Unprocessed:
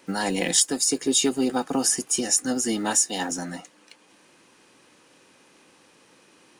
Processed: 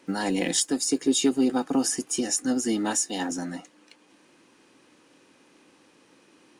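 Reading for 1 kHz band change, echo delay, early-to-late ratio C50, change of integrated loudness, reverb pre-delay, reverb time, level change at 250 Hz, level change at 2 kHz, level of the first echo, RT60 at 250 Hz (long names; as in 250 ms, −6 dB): −3.0 dB, no echo audible, no reverb audible, −2.5 dB, no reverb audible, no reverb audible, +2.0 dB, −3.0 dB, no echo audible, no reverb audible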